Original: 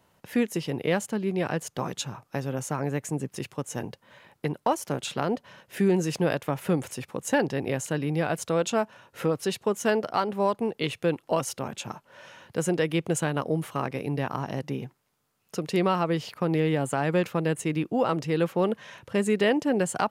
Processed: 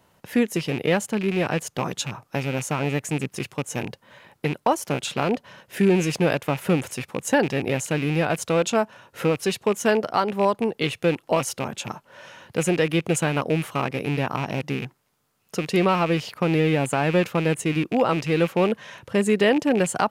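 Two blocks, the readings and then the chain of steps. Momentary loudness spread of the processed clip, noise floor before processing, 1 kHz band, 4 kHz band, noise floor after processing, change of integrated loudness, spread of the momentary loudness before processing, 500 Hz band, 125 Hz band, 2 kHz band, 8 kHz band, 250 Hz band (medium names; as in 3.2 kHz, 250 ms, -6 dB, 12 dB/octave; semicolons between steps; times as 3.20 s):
10 LU, -70 dBFS, +4.0 dB, +5.5 dB, -66 dBFS, +4.0 dB, 10 LU, +4.0 dB, +4.0 dB, +6.0 dB, +4.0 dB, +4.0 dB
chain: rattle on loud lows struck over -33 dBFS, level -26 dBFS; trim +4 dB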